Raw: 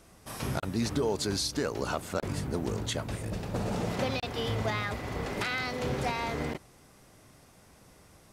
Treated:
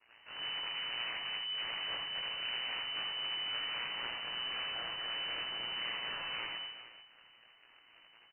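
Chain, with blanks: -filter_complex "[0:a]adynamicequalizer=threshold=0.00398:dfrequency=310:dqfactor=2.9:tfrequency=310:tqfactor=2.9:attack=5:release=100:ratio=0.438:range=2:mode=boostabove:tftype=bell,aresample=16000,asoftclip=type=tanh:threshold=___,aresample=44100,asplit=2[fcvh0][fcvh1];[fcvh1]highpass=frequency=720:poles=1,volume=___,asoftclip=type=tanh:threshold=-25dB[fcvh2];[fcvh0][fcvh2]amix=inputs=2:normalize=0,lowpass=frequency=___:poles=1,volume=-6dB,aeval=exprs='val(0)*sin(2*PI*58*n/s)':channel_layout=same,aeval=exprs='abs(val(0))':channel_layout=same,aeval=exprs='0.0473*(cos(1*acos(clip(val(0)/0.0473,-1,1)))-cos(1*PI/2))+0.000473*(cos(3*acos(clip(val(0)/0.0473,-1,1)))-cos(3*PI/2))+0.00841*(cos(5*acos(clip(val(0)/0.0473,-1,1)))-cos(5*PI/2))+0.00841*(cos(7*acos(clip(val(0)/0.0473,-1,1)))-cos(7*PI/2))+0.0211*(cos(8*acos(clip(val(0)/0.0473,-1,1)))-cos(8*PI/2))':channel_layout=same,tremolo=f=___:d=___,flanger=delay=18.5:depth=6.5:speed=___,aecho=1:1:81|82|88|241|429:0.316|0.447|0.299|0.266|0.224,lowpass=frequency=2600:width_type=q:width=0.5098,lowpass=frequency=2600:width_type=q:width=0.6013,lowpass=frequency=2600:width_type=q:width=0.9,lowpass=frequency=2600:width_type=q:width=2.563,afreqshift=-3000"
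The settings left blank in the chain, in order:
-28.5dB, 19dB, 1800, 120, 0.667, 0.61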